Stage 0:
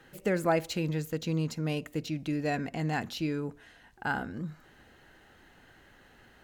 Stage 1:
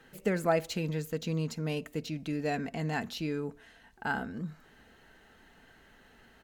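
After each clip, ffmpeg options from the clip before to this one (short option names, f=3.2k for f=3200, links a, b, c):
-af "aecho=1:1:4.5:0.34,volume=-1.5dB"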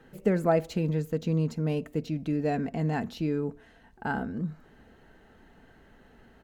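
-af "tiltshelf=f=1.2k:g=6"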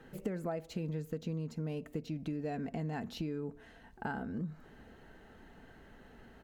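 -af "acompressor=threshold=-35dB:ratio=6"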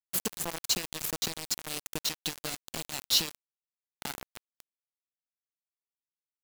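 -af "aexciter=amount=7.4:drive=9.8:freq=2.8k,acrusher=bits=4:mix=0:aa=0.000001"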